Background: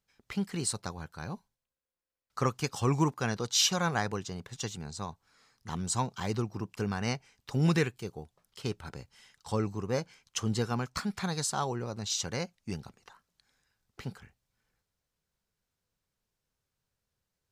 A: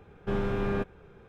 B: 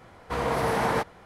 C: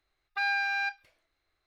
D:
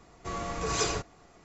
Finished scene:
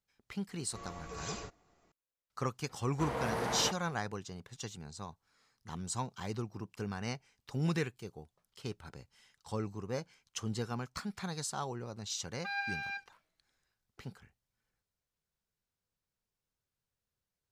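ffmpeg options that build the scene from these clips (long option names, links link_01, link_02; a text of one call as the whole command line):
ffmpeg -i bed.wav -i cue0.wav -i cue1.wav -i cue2.wav -i cue3.wav -filter_complex "[0:a]volume=-6.5dB[link_01];[3:a]flanger=delay=5.3:depth=1.2:regen=64:speed=1.3:shape=sinusoidal[link_02];[4:a]atrim=end=1.44,asetpts=PTS-STARTPTS,volume=-13dB,afade=type=in:duration=0.004:curve=hsin,afade=type=out:start_time=1.436:duration=0.004:curve=hsin,adelay=480[link_03];[2:a]atrim=end=1.25,asetpts=PTS-STARTPTS,volume=-10dB,afade=type=in:duration=0.004:curve=hsin,afade=type=out:start_time=1.246:duration=0.004:curve=hsin,adelay=2690[link_04];[link_02]atrim=end=1.66,asetpts=PTS-STARTPTS,volume=-4.5dB,afade=type=in:duration=0.004:curve=hsin,afade=type=out:start_time=1.656:duration=0.004:curve=hsin,adelay=12080[link_05];[link_01][link_03][link_04][link_05]amix=inputs=4:normalize=0" out.wav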